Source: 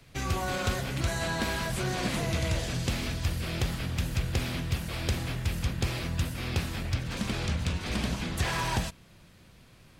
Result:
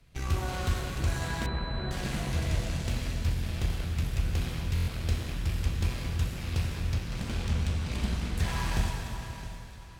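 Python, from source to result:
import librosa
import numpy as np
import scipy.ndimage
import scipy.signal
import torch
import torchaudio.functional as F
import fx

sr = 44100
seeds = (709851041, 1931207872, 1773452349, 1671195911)

y = fx.cheby_harmonics(x, sr, harmonics=(3, 6, 7), levels_db=(-21, -19, -34), full_scale_db=-18.5)
y = fx.low_shelf(y, sr, hz=100.0, db=11.5)
y = fx.echo_feedback(y, sr, ms=665, feedback_pct=35, wet_db=-16)
y = fx.rev_plate(y, sr, seeds[0], rt60_s=2.7, hf_ratio=0.95, predelay_ms=0, drr_db=0.0)
y = fx.rider(y, sr, range_db=4, speed_s=2.0)
y = fx.buffer_glitch(y, sr, at_s=(4.74,), block=1024, repeats=5)
y = fx.pwm(y, sr, carrier_hz=4000.0, at=(1.46, 1.91))
y = F.gain(torch.from_numpy(y), -7.0).numpy()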